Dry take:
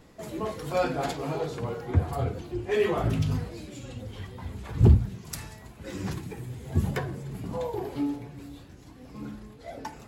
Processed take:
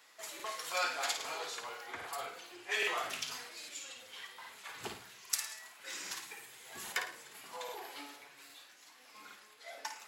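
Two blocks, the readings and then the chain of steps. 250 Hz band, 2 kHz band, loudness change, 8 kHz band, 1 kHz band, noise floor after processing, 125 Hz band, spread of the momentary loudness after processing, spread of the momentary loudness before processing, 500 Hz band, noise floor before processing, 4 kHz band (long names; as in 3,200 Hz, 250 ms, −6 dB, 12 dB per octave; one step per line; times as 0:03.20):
−26.0 dB, +1.5 dB, −10.5 dB, +5.5 dB, −5.5 dB, −60 dBFS, below −40 dB, 19 LU, 18 LU, −15.5 dB, −49 dBFS, +4.0 dB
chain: high-pass filter 1,400 Hz 12 dB per octave
dynamic equaliser 6,400 Hz, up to +4 dB, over −54 dBFS, Q 1.1
on a send: flutter between parallel walls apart 9.3 metres, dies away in 0.4 s
on the sum: regular buffer underruns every 0.81 s, samples 2,048, repeat, from 0:00.35
level +2 dB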